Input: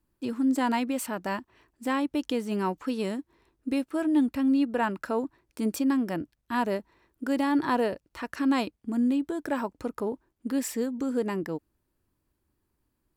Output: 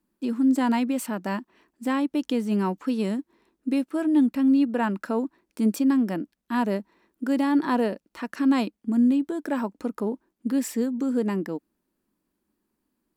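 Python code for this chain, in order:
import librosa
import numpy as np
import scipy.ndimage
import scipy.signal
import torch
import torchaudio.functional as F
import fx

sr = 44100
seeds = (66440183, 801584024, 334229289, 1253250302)

y = fx.low_shelf_res(x, sr, hz=150.0, db=-9.5, q=3.0)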